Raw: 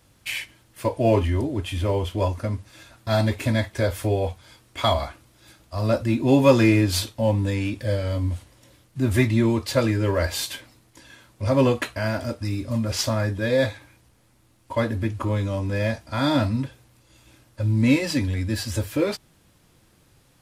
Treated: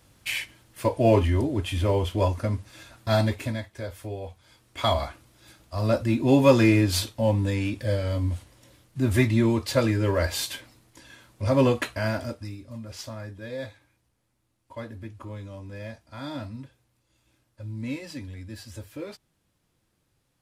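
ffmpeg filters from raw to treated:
-af "volume=10.5dB,afade=t=out:st=3.1:d=0.53:silence=0.251189,afade=t=in:st=4.29:d=0.71:silence=0.298538,afade=t=out:st=12.1:d=0.48:silence=0.237137"

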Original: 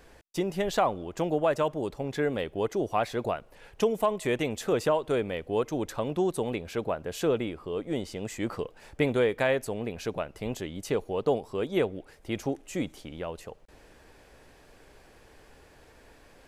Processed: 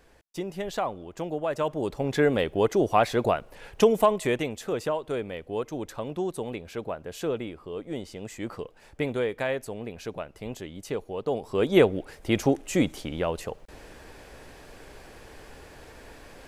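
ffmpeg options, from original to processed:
-af "volume=17dB,afade=t=in:st=1.47:d=0.68:silence=0.316228,afade=t=out:st=3.99:d=0.56:silence=0.354813,afade=t=in:st=11.3:d=0.42:silence=0.281838"

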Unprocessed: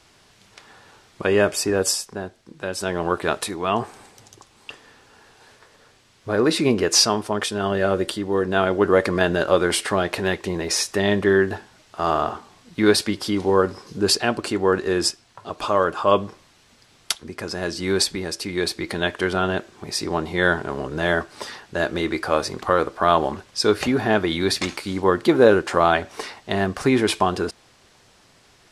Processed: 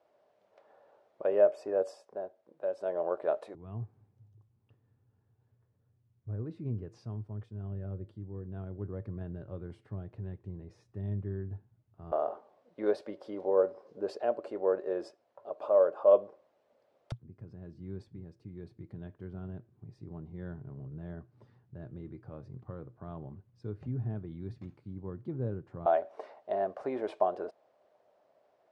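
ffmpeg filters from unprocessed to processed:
-af "asetnsamples=n=441:p=0,asendcmd='3.55 bandpass f 110;12.12 bandpass f 570;17.12 bandpass f 120;25.86 bandpass f 610',bandpass=f=590:t=q:w=5.7:csg=0"

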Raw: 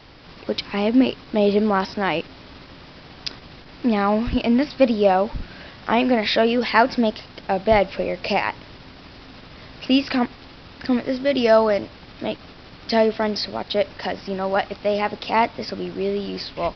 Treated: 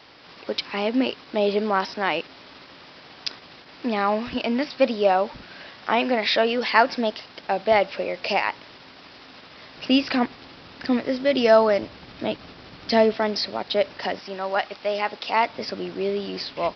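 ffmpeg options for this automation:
-af "asetnsamples=n=441:p=0,asendcmd='9.77 highpass f 180;11.83 highpass f 80;13.14 highpass f 250;14.19 highpass f 700;15.49 highpass f 250',highpass=f=480:p=1"

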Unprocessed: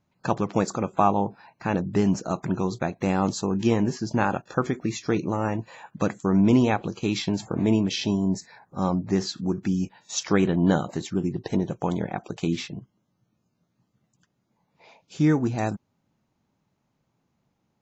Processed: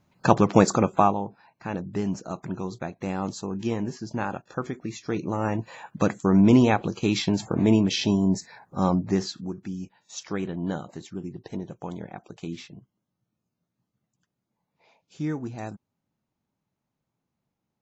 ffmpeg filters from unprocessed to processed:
-af "volume=14.5dB,afade=t=out:st=0.77:d=0.42:silence=0.237137,afade=t=in:st=5.03:d=0.68:silence=0.398107,afade=t=out:st=8.95:d=0.6:silence=0.281838"

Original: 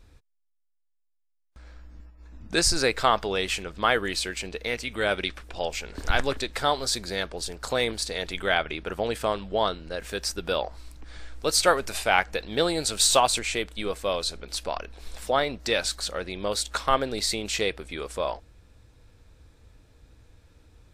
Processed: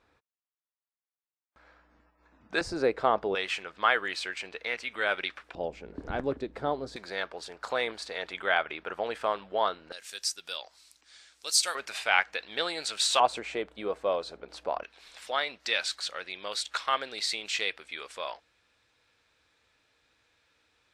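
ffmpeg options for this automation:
-af "asetnsamples=n=441:p=0,asendcmd='2.61 bandpass f 450;3.35 bandpass f 1500;5.55 bandpass f 280;6.96 bandpass f 1200;9.92 bandpass f 6400;11.75 bandpass f 2100;13.2 bandpass f 670;14.83 bandpass f 2500',bandpass=f=1.1k:t=q:w=0.75:csg=0"

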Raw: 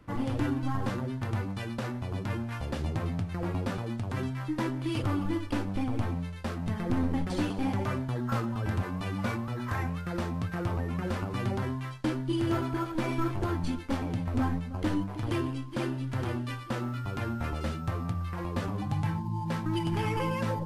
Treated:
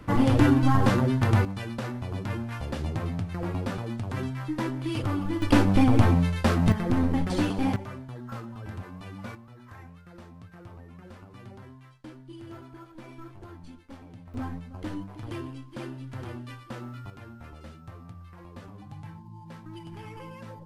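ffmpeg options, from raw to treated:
-af "asetnsamples=n=441:p=0,asendcmd='1.45 volume volume 1dB;5.42 volume volume 11.5dB;6.72 volume volume 4dB;7.76 volume volume -8dB;9.35 volume volume -15dB;14.34 volume volume -6dB;17.1 volume volume -12.5dB',volume=10dB"

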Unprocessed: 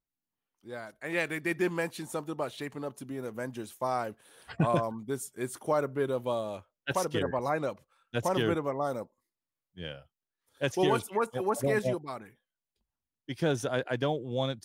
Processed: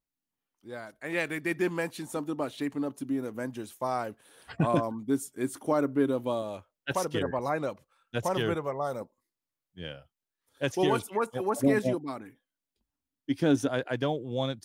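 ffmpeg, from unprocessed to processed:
-af "asetnsamples=n=441:p=0,asendcmd='2.16 equalizer g 11;3.47 equalizer g 3.5;4.65 equalizer g 12.5;6.42 equalizer g 2;8.18 equalizer g -7;9.01 equalizer g 3;11.55 equalizer g 13.5;13.68 equalizer g 2.5',equalizer=f=280:t=o:w=0.32:g=4"

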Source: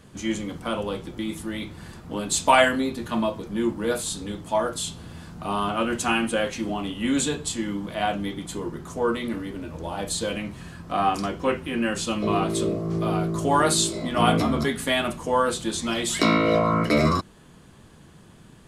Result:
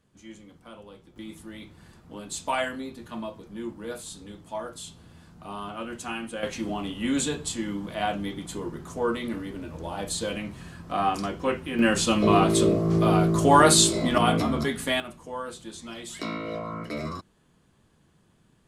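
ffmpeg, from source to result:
-af "asetnsamples=n=441:p=0,asendcmd='1.16 volume volume -10.5dB;6.43 volume volume -2.5dB;11.79 volume volume 4dB;14.18 volume volume -2.5dB;15 volume volume -13dB',volume=-18dB"

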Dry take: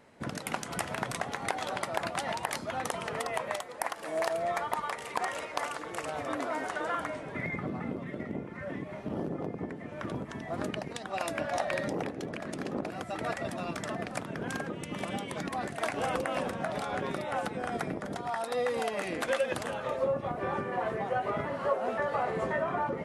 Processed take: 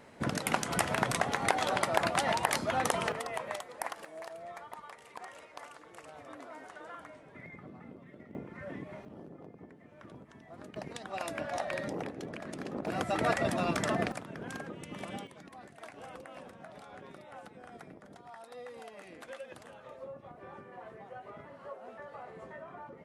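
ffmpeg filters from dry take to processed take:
-af "asetnsamples=n=441:p=0,asendcmd='3.12 volume volume -4dB;4.05 volume volume -14dB;8.35 volume volume -4.5dB;9.05 volume volume -14.5dB;10.76 volume volume -4dB;12.87 volume volume 5dB;14.12 volume volume -6dB;15.27 volume volume -16dB',volume=4dB"

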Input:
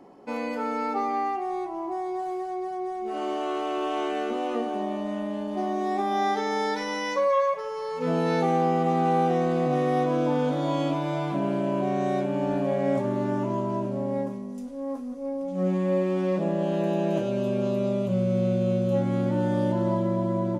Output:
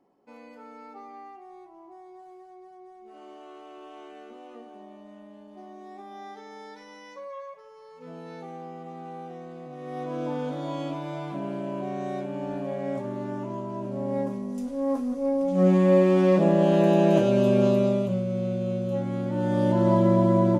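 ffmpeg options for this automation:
-af "volume=16dB,afade=t=in:st=9.77:d=0.48:silence=0.281838,afade=t=in:st=13.75:d=1.17:silence=0.251189,afade=t=out:st=17.64:d=0.59:silence=0.316228,afade=t=in:st=19.29:d=0.79:silence=0.316228"

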